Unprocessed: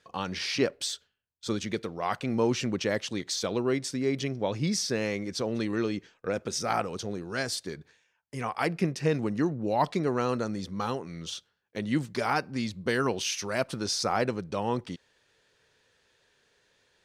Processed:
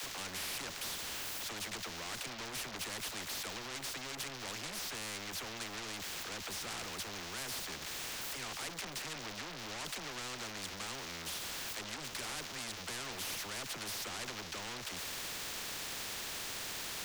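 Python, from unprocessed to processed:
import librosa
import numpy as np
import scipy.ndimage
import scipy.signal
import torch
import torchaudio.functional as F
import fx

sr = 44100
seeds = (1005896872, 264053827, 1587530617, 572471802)

y = x + 0.5 * 10.0 ** (-27.5 / 20.0) * np.diff(np.sign(x), prepend=np.sign(x[:1]))
y = fx.graphic_eq(y, sr, hz=(125, 250, 500, 1000), db=(-11, -5, -10, -5))
y = fx.leveller(y, sr, passes=5)
y = fx.air_absorb(y, sr, metres=250.0)
y = fx.dispersion(y, sr, late='lows', ms=45.0, hz=300.0)
y = 10.0 ** (-24.5 / 20.0) * np.tanh(y / 10.0 ** (-24.5 / 20.0))
y = fx.spectral_comp(y, sr, ratio=4.0)
y = y * librosa.db_to_amplitude(-2.0)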